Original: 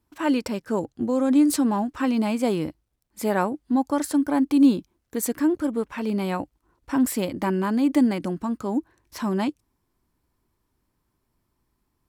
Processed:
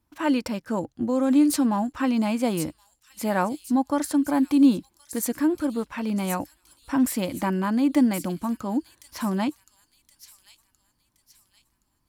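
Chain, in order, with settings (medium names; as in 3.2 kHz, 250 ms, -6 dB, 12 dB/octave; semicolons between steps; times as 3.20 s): peaking EQ 410 Hz -11 dB 0.21 oct; band-stop 7.9 kHz, Q 28; feedback echo behind a high-pass 1071 ms, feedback 39%, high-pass 5.3 kHz, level -5 dB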